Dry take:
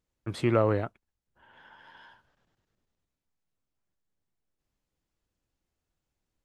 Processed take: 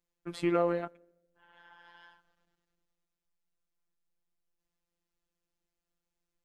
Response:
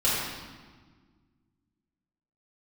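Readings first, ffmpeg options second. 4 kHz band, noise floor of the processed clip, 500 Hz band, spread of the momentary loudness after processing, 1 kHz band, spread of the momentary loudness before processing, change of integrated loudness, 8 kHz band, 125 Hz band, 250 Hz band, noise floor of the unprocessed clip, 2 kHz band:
-3.5 dB, under -85 dBFS, -3.0 dB, 16 LU, -2.5 dB, 15 LU, -3.5 dB, no reading, -12.0 dB, -2.5 dB, under -85 dBFS, -4.0 dB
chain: -filter_complex "[0:a]asplit=2[s0][s1];[1:a]atrim=start_sample=2205,asetrate=79380,aresample=44100[s2];[s1][s2]afir=irnorm=-1:irlink=0,volume=0.0178[s3];[s0][s3]amix=inputs=2:normalize=0,afftfilt=real='hypot(re,im)*cos(PI*b)':imag='0':win_size=1024:overlap=0.75,equalizer=f=110:t=o:w=0.83:g=-8.5"

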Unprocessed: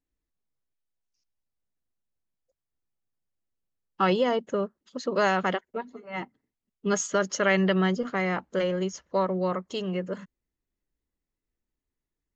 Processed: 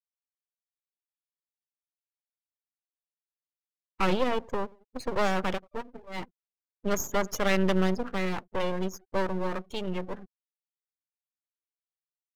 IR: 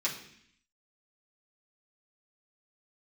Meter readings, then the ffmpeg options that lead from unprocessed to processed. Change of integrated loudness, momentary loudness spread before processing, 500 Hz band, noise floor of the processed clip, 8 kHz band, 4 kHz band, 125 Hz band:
-3.0 dB, 14 LU, -3.5 dB, under -85 dBFS, no reading, -2.0 dB, -2.5 dB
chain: -filter_complex "[0:a]asplit=2[s0][s1];[s1]adelay=90,lowpass=f=2100:p=1,volume=0.0631,asplit=2[s2][s3];[s3]adelay=90,lowpass=f=2100:p=1,volume=0.52,asplit=2[s4][s5];[s5]adelay=90,lowpass=f=2100:p=1,volume=0.52[s6];[s0][s2][s4][s6]amix=inputs=4:normalize=0,afftfilt=real='re*gte(hypot(re,im),0.0126)':imag='im*gte(hypot(re,im),0.0126)':win_size=1024:overlap=0.75,aeval=exprs='max(val(0),0)':c=same,volume=1.19"

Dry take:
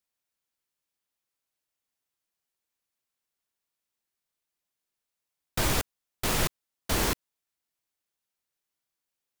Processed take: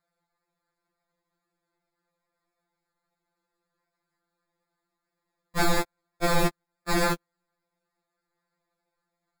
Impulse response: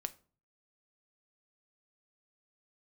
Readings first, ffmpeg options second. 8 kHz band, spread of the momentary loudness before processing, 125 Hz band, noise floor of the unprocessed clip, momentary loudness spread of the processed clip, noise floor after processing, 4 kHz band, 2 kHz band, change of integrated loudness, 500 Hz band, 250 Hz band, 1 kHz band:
-4.0 dB, 10 LU, +1.5 dB, under -85 dBFS, 11 LU, -85 dBFS, -1.0 dB, +3.5 dB, +2.0 dB, +6.0 dB, +5.5 dB, +5.5 dB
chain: -af "acrusher=samples=15:mix=1:aa=0.000001,afftfilt=real='re*2.83*eq(mod(b,8),0)':imag='im*2.83*eq(mod(b,8),0)':win_size=2048:overlap=0.75,volume=2"

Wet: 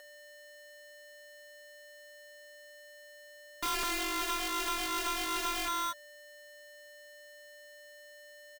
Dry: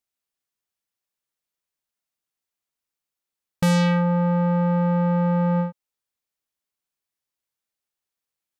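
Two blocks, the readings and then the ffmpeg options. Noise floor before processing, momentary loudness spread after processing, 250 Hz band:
under -85 dBFS, 20 LU, -23.0 dB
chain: -filter_complex "[0:a]acrossover=split=490[s0][s1];[s0]aeval=exprs='val(0)*(1-0.7/2+0.7/2*cos(2*PI*2.6*n/s))':c=same[s2];[s1]aeval=exprs='val(0)*(1-0.7/2-0.7/2*cos(2*PI*2.6*n/s))':c=same[s3];[s2][s3]amix=inputs=2:normalize=0,lowshelf=f=450:g=7,aecho=1:1:32.07|207:0.562|0.708,aeval=exprs='(mod(7.08*val(0)+1,2)-1)/7.08':c=same,aeval=exprs='val(0)+0.00447*sin(2*PI*610*n/s)':c=same,asoftclip=type=tanh:threshold=0.0224,bandreject=f=530:w=12,aecho=1:1:4.3:0.53,aeval=exprs='val(0)*sgn(sin(2*PI*1200*n/s))':c=same"

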